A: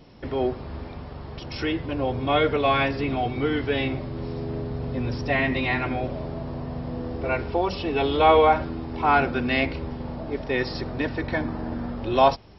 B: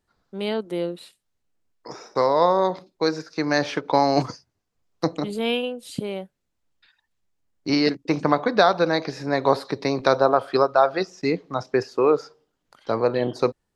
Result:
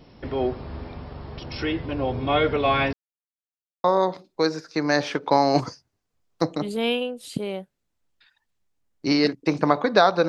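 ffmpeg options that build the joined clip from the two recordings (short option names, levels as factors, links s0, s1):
-filter_complex "[0:a]apad=whole_dur=10.28,atrim=end=10.28,asplit=2[s0][s1];[s0]atrim=end=2.93,asetpts=PTS-STARTPTS,afade=t=out:st=2.926:d=0.004:c=hsin[s2];[s1]atrim=start=2.93:end=3.84,asetpts=PTS-STARTPTS,volume=0[s3];[1:a]atrim=start=2.46:end=8.9,asetpts=PTS-STARTPTS,afade=t=in:d=0.004:c=hsin[s4];[s2][s3][s4]concat=n=3:v=0:a=1"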